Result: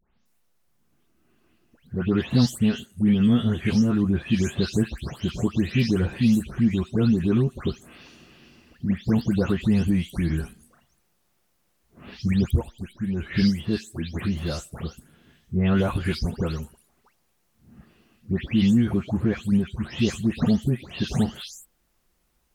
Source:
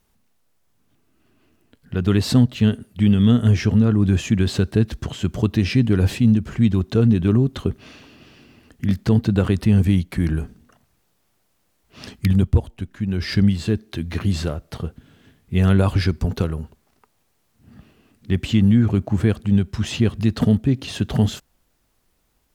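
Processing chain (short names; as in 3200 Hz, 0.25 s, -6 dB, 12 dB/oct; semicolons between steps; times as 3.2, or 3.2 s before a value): spectral delay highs late, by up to 0.258 s; gain -2.5 dB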